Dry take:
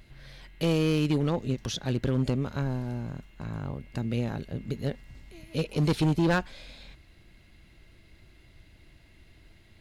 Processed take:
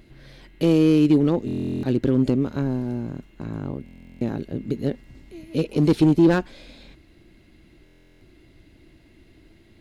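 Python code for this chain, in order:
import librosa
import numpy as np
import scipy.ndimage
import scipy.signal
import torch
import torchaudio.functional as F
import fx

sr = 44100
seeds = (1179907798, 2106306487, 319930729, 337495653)

y = fx.peak_eq(x, sr, hz=310.0, db=11.5, octaves=1.3)
y = fx.buffer_glitch(y, sr, at_s=(1.46, 3.84, 7.84), block=1024, repeats=15)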